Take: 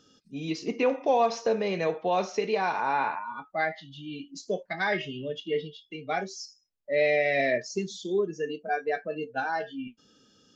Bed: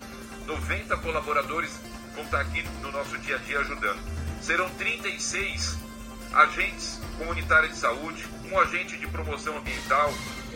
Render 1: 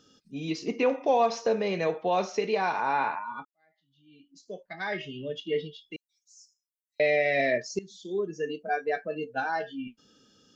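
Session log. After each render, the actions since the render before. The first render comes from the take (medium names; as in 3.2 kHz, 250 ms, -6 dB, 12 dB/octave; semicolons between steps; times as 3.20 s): 3.45–5.39 s: fade in quadratic; 5.96–7.00 s: inverse Chebyshev high-pass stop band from 1.5 kHz, stop band 80 dB; 7.79–8.44 s: fade in, from -16 dB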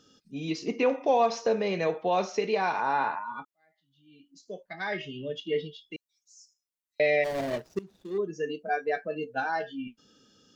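2.82–3.36 s: band-stop 2.3 kHz, Q 6; 7.24–8.18 s: median filter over 41 samples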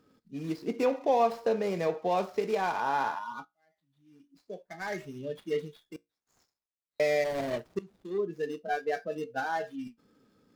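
median filter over 15 samples; feedback comb 58 Hz, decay 0.2 s, harmonics all, mix 30%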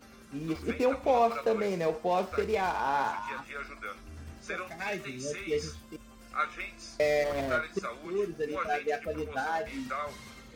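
add bed -12.5 dB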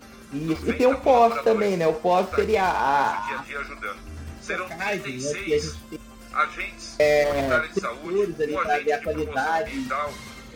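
trim +8 dB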